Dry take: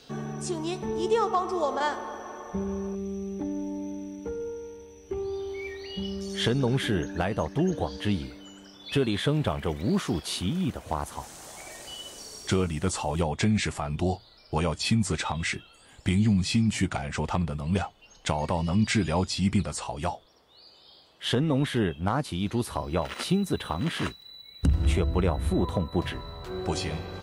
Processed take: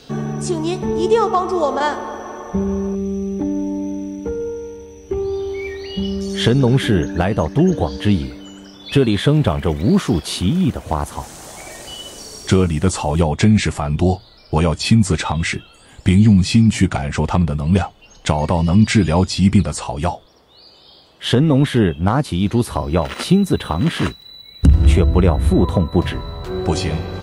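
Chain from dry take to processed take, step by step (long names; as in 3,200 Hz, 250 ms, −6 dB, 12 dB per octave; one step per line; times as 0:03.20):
low-shelf EQ 450 Hz +5 dB
level +7.5 dB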